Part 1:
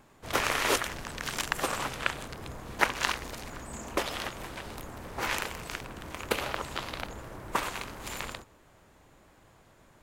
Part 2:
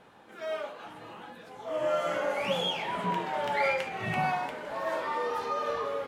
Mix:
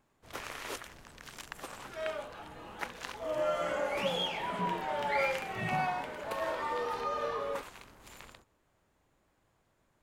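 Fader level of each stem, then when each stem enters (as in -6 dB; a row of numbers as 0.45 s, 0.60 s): -14.0 dB, -3.0 dB; 0.00 s, 1.55 s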